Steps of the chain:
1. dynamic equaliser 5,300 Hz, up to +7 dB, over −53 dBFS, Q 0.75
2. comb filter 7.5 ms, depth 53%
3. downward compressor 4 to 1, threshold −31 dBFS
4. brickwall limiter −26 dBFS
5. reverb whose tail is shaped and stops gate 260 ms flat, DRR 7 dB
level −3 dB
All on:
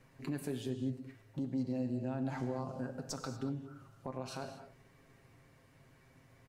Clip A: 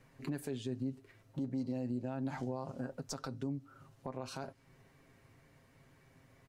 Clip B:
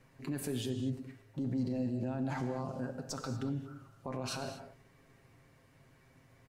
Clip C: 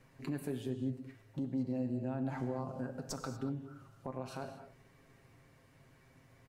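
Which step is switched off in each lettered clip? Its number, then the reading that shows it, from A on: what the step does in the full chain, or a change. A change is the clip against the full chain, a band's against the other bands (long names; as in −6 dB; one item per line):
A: 5, change in momentary loudness spread −2 LU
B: 3, average gain reduction 9.5 dB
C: 1, 4 kHz band −3.0 dB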